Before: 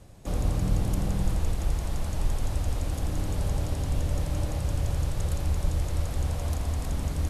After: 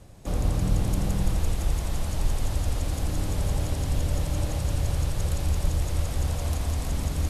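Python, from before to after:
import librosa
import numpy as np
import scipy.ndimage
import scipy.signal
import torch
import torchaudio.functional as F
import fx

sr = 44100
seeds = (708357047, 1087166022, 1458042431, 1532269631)

y = fx.echo_wet_highpass(x, sr, ms=168, feedback_pct=85, hz=2200.0, wet_db=-6.0)
y = F.gain(torch.from_numpy(y), 1.5).numpy()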